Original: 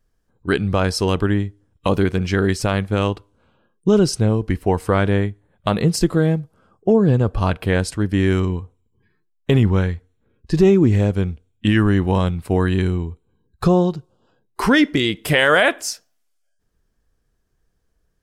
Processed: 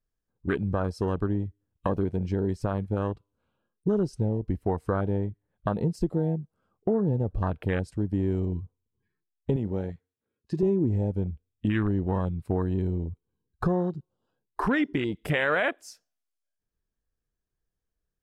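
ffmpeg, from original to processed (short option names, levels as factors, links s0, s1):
-filter_complex "[0:a]asettb=1/sr,asplit=3[s0][s1][s2];[s0]atrim=end=9.564[s3];[s1]atrim=start=9.56:end=10.63,asetpts=PTS-STARTPTS,afade=t=in:d=0.004:c=qsin,afade=t=out:st=1.066:d=0.004:c=qsin,highpass=f=300:p=1[s4];[s2]atrim=start=10.626[s5];[s3][s4]acrossfade=d=0.004:c1=hsin:c2=qsin[s6];[s6][s5]acrossfade=d=0.004:c1=qsin:c2=hsin,afwtdn=0.0708,acompressor=threshold=0.0316:ratio=2"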